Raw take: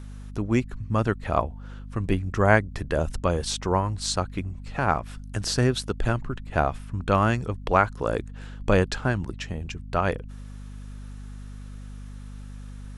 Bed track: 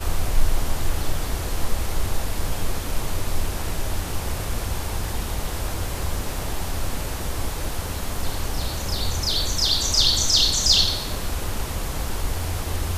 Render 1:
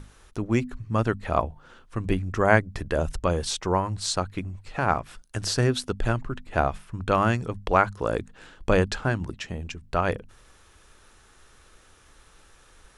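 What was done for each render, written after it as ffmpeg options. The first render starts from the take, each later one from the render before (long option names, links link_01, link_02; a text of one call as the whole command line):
ffmpeg -i in.wav -af "bandreject=frequency=50:width_type=h:width=6,bandreject=frequency=100:width_type=h:width=6,bandreject=frequency=150:width_type=h:width=6,bandreject=frequency=200:width_type=h:width=6,bandreject=frequency=250:width_type=h:width=6" out.wav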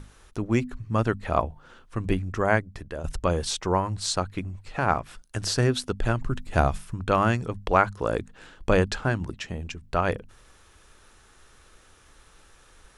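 ffmpeg -i in.wav -filter_complex "[0:a]asettb=1/sr,asplit=3[link_01][link_02][link_03];[link_01]atrim=end=6.214[link_04];[link_02]atrim=start=6.21:end=6.94,asetpts=PTS-STARTPTS,afade=type=in:duration=0.004:curve=qsin,afade=type=out:start_time=0.726:duration=0.004:curve=qsin,bass=frequency=250:gain=6,treble=frequency=4000:gain=9[link_05];[link_03]atrim=start=6.936[link_06];[link_04][link_05]acrossfade=duration=0.004:curve1=hsin:curve2=qsin[link_07];[link_07][link_06]acrossfade=duration=0.004:curve1=qsin:curve2=hsin,asplit=2[link_08][link_09];[link_08]atrim=end=3.04,asetpts=PTS-STARTPTS,afade=type=out:start_time=2.11:duration=0.93:silence=0.266073[link_10];[link_09]atrim=start=3.04,asetpts=PTS-STARTPTS,afade=type=in:duration=0.004:curve=hsin:silence=0.266073[link_11];[link_10][link_11]concat=n=2:v=0:a=1" out.wav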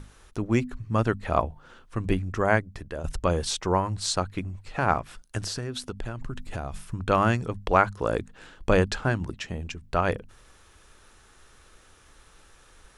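ffmpeg -i in.wav -filter_complex "[0:a]asettb=1/sr,asplit=3[link_01][link_02][link_03];[link_01]atrim=end=5.394[link_04];[link_02]atrim=start=5.39:end=6.81,asetpts=PTS-STARTPTS,afade=type=in:duration=0.004:curve=qsin,afade=type=out:start_time=1.416:duration=0.004:curve=qsin,acompressor=threshold=-29dB:ratio=5:attack=3.2:release=140:knee=1:detection=peak[link_05];[link_03]atrim=start=6.806[link_06];[link_04][link_05]acrossfade=duration=0.004:curve1=hsin:curve2=qsin[link_07];[link_07][link_06]acrossfade=duration=0.004:curve1=qsin:curve2=hsin" out.wav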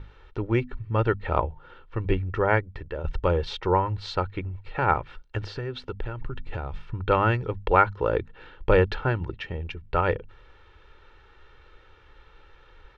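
ffmpeg -i in.wav -af "lowpass=frequency=3500:width=0.5412,lowpass=frequency=3500:width=1.3066,aecho=1:1:2.2:0.58" out.wav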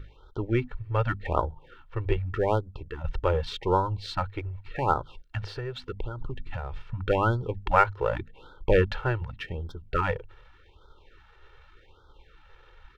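ffmpeg -i in.wav -af "aeval=exprs='if(lt(val(0),0),0.708*val(0),val(0))':channel_layout=same,afftfilt=real='re*(1-between(b*sr/1024,200*pow(2300/200,0.5+0.5*sin(2*PI*0.85*pts/sr))/1.41,200*pow(2300/200,0.5+0.5*sin(2*PI*0.85*pts/sr))*1.41))':imag='im*(1-between(b*sr/1024,200*pow(2300/200,0.5+0.5*sin(2*PI*0.85*pts/sr))/1.41,200*pow(2300/200,0.5+0.5*sin(2*PI*0.85*pts/sr))*1.41))':win_size=1024:overlap=0.75" out.wav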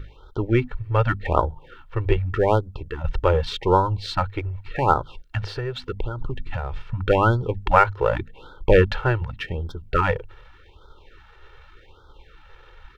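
ffmpeg -i in.wav -af "volume=6dB,alimiter=limit=-1dB:level=0:latency=1" out.wav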